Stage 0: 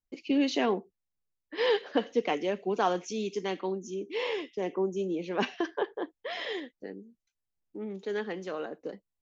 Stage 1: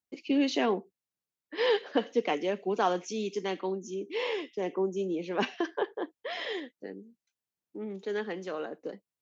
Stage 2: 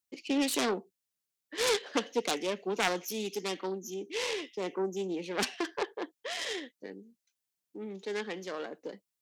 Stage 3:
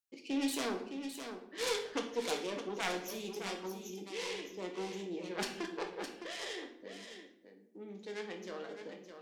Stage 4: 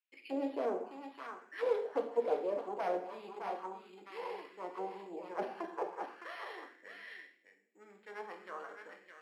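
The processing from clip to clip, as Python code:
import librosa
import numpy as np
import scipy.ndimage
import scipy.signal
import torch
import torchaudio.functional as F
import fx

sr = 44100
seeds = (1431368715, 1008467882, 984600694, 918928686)

y1 = scipy.signal.sosfilt(scipy.signal.butter(2, 130.0, 'highpass', fs=sr, output='sos'), x)
y2 = fx.self_delay(y1, sr, depth_ms=0.32)
y2 = fx.high_shelf(y2, sr, hz=2600.0, db=9.5)
y2 = y2 * librosa.db_to_amplitude(-3.0)
y3 = y2 + 10.0 ** (-8.5 / 20.0) * np.pad(y2, (int(612 * sr / 1000.0), 0))[:len(y2)]
y3 = fx.room_shoebox(y3, sr, seeds[0], volume_m3=140.0, walls='mixed', distance_m=0.65)
y3 = y3 * librosa.db_to_amplitude(-8.0)
y4 = np.repeat(scipy.signal.resample_poly(y3, 1, 6), 6)[:len(y3)]
y4 = fx.auto_wah(y4, sr, base_hz=580.0, top_hz=2500.0, q=2.6, full_db=-34.5, direction='down')
y4 = y4 * librosa.db_to_amplitude(8.5)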